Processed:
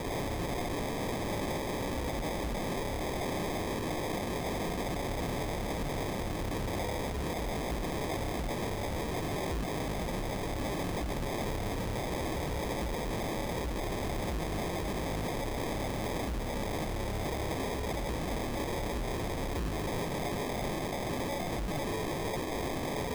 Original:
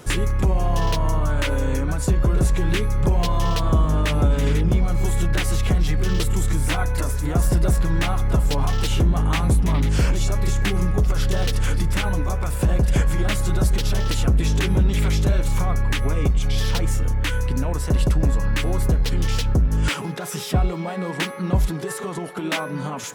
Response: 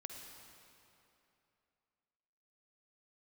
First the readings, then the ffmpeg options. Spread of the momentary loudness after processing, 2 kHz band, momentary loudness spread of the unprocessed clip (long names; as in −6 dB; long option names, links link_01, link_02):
1 LU, −9.5 dB, 5 LU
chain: -filter_complex "[0:a]acompressor=threshold=-24dB:ratio=3,asplit=2[link_01][link_02];[link_02]highpass=frequency=720:poles=1,volume=24dB,asoftclip=type=tanh:threshold=-13dB[link_03];[link_01][link_03]amix=inputs=2:normalize=0,lowpass=frequency=1300:poles=1,volume=-6dB,acrusher=samples=31:mix=1:aa=0.000001,aeval=exprs='0.0531*(abs(mod(val(0)/0.0531+3,4)-2)-1)':channel_layout=same,volume=-3.5dB"